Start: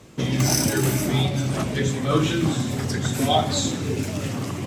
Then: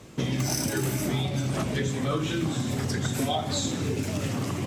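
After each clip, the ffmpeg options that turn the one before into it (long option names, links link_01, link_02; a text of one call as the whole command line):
ffmpeg -i in.wav -af "acompressor=threshold=-24dB:ratio=6" out.wav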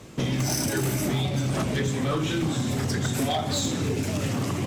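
ffmpeg -i in.wav -af "asoftclip=type=hard:threshold=-23dB,volume=2.5dB" out.wav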